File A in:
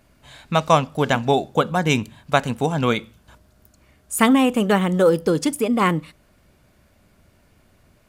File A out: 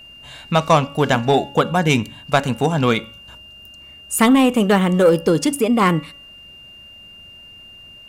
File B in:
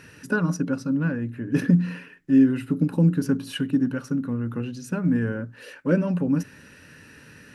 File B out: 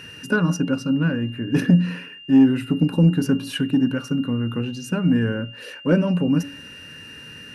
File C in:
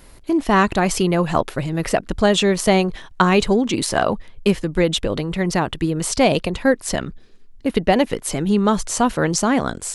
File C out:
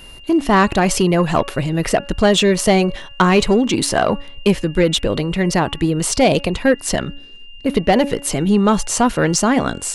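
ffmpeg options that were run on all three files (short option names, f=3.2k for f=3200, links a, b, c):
-af "acontrast=63,aeval=exprs='val(0)+0.0141*sin(2*PI*2800*n/s)':c=same,bandreject=f=281.9:t=h:w=4,bandreject=f=563.8:t=h:w=4,bandreject=f=845.7:t=h:w=4,bandreject=f=1.1276k:t=h:w=4,bandreject=f=1.4095k:t=h:w=4,bandreject=f=1.6914k:t=h:w=4,bandreject=f=1.9733k:t=h:w=4,bandreject=f=2.2552k:t=h:w=4,bandreject=f=2.5371k:t=h:w=4,bandreject=f=2.819k:t=h:w=4,volume=-2.5dB"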